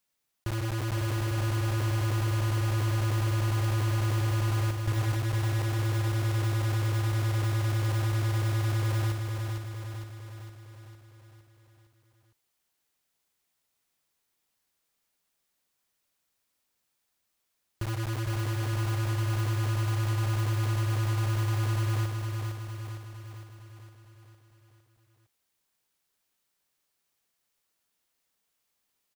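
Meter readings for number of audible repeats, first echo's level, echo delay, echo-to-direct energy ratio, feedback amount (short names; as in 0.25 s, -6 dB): 6, -5.0 dB, 0.458 s, -3.5 dB, 56%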